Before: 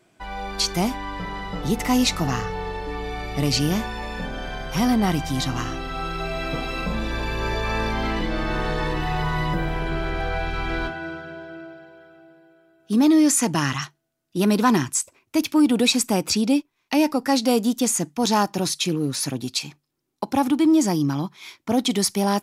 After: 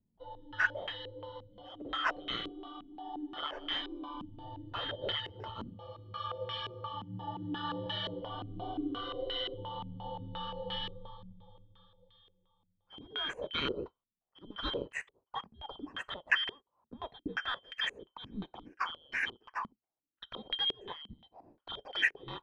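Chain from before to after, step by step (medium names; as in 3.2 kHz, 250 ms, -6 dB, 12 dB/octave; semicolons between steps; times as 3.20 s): four frequency bands reordered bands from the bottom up 2413; step-sequenced low-pass 5.7 Hz 220–1900 Hz; trim -8.5 dB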